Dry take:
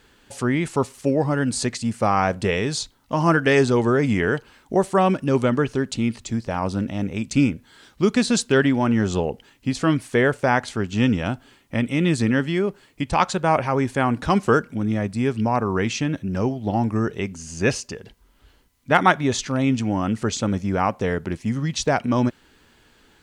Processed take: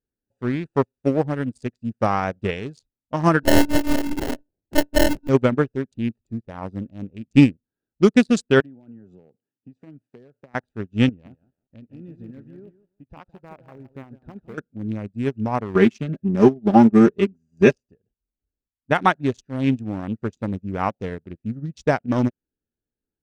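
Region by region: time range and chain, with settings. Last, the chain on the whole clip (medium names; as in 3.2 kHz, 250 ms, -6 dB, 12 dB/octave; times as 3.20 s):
3.43–5.29 s: hum notches 50/100/150/200/250/300/350/400/450/500 Hz + monotone LPC vocoder at 8 kHz 290 Hz + sample-rate reducer 1.2 kHz
8.60–10.55 s: high-pass 110 Hz 24 dB/octave + compression 4:1, threshold -26 dBFS
11.09–14.58 s: low-pass 4.1 kHz + compression 2:1, threshold -30 dBFS + bit-crushed delay 164 ms, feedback 35%, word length 7-bit, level -5 dB
15.75–17.75 s: comb 5 ms, depth 84% + dynamic bell 320 Hz, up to +6 dB, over -33 dBFS, Q 1.9
whole clip: local Wiener filter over 41 samples; loudness maximiser +7.5 dB; upward expansion 2.5:1, over -32 dBFS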